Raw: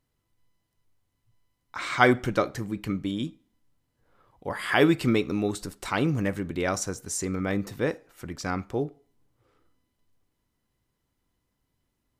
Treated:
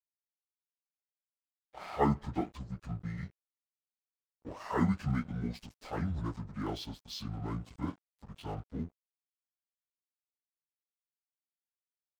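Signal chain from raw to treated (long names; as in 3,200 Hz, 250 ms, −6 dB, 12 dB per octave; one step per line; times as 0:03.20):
phase-vocoder pitch shift without resampling −9.5 semitones
dead-zone distortion −45 dBFS
level −7.5 dB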